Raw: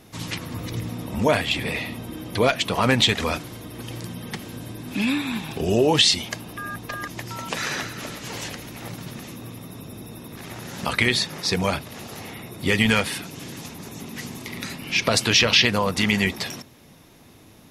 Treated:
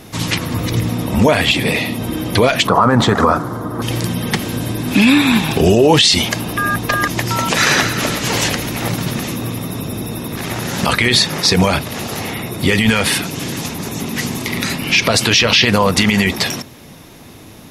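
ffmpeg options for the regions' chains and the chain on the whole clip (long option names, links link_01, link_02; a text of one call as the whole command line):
ffmpeg -i in.wav -filter_complex "[0:a]asettb=1/sr,asplit=3[link_01][link_02][link_03];[link_01]atrim=end=1.514[link_04];[link_02]atrim=start=1.51:end=2.01,asetpts=PTS-STARTPTS,afade=type=in:duration=0.004:curve=qsin,afade=type=out:start_time=0.496:duration=0.004:curve=qsin,highpass=110,equalizer=frequency=1500:width=0.64:gain=-4.5[link_05];[link_03]atrim=start=2.006[link_06];[link_04][link_05]acrossfade=duration=0.004:curve1=hsin:curve2=qsin[link_07];[link_07][link_06]acrossfade=duration=0.004:curve1=qsin:curve2=hsin,asettb=1/sr,asplit=3[link_08][link_09][link_10];[link_08]atrim=end=2.674[link_11];[link_09]atrim=start=2.67:end=3.82,asetpts=PTS-STARTPTS,afade=type=in:duration=0.004:curve=qsin,afade=type=out:start_time=1.146:duration=0.004:curve=qsin,highpass=88,highshelf=frequency=1800:width_type=q:width=3:gain=-12[link_12];[link_10]atrim=start=3.816[link_13];[link_11][link_12]acrossfade=duration=0.004:curve1=hsin:curve2=qsin[link_14];[link_14][link_13]acrossfade=duration=0.004:curve1=qsin:curve2=hsin,dynaudnorm=framelen=140:gausssize=31:maxgain=5.5dB,alimiter=level_in=13dB:limit=-1dB:release=50:level=0:latency=1,volume=-1dB" out.wav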